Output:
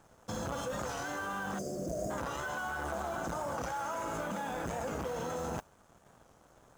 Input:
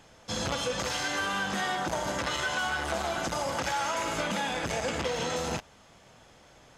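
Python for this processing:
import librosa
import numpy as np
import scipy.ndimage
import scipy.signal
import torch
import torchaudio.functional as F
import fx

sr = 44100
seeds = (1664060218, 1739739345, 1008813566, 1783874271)

p1 = fx.spec_erase(x, sr, start_s=1.58, length_s=0.53, low_hz=730.0, high_hz=4500.0)
p2 = fx.mod_noise(p1, sr, seeds[0], snr_db=17)
p3 = fx.high_shelf(p2, sr, hz=6200.0, db=-9.0)
p4 = fx.over_compress(p3, sr, threshold_db=-36.0, ratio=-0.5)
p5 = p3 + (p4 * librosa.db_to_amplitude(0.0))
p6 = np.sign(p5) * np.maximum(np.abs(p5) - 10.0 ** (-49.0 / 20.0), 0.0)
p7 = fx.band_shelf(p6, sr, hz=3100.0, db=-10.0, octaves=1.7)
p8 = fx.record_warp(p7, sr, rpm=45.0, depth_cents=100.0)
y = p8 * librosa.db_to_amplitude(-7.0)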